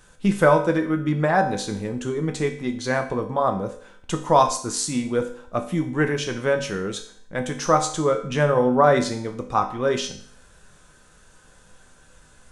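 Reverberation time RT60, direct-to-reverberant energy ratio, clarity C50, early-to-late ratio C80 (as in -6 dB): 0.55 s, 4.0 dB, 10.0 dB, 13.5 dB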